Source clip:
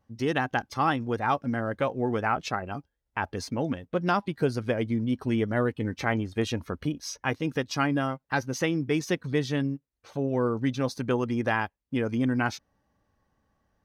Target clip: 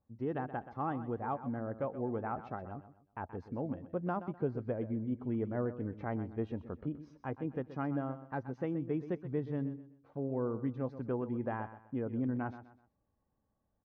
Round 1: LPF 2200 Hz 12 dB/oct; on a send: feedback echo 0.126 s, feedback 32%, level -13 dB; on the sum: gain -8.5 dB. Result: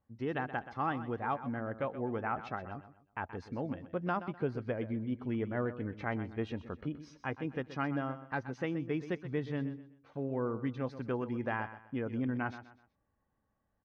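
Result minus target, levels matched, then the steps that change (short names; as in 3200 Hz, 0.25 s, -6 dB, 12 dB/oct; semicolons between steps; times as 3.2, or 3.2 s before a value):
2000 Hz band +8.0 dB
change: LPF 950 Hz 12 dB/oct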